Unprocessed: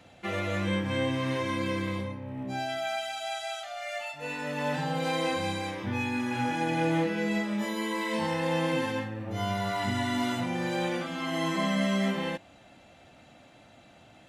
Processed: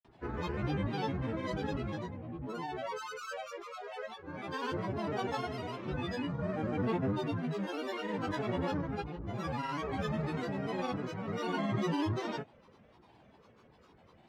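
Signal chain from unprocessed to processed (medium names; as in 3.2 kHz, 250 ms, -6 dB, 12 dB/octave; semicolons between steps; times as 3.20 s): low-pass 1.4 kHz 6 dB/octave; granulator, pitch spread up and down by 12 st; trim -3.5 dB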